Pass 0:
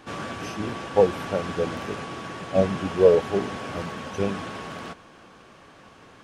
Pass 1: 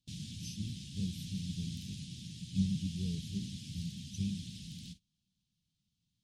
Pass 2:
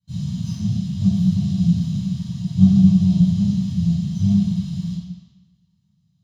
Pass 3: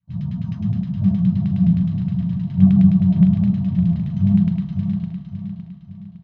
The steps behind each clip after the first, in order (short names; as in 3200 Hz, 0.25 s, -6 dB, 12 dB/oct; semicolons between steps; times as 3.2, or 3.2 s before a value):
elliptic band-stop 180–3700 Hz, stop band 60 dB; gate -48 dBFS, range -22 dB; gain -2.5 dB
minimum comb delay 1 ms; reverb RT60 1.1 s, pre-delay 3 ms, DRR -17.5 dB; gain -13 dB
LFO low-pass saw down 9.6 Hz 600–2400 Hz; feedback echo 0.56 s, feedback 43%, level -7.5 dB